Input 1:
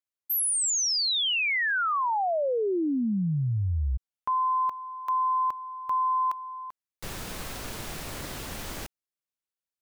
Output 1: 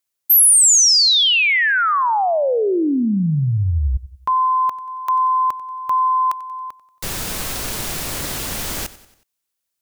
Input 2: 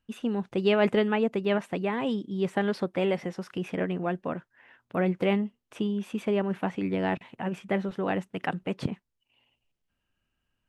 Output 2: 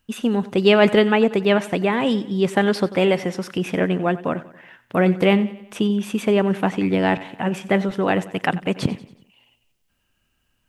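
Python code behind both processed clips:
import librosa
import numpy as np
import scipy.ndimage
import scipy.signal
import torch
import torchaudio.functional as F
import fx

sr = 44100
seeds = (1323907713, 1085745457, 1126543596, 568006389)

p1 = fx.high_shelf(x, sr, hz=4000.0, db=7.5)
p2 = p1 + fx.echo_feedback(p1, sr, ms=92, feedback_pct=50, wet_db=-17.5, dry=0)
y = F.gain(torch.from_numpy(p2), 8.5).numpy()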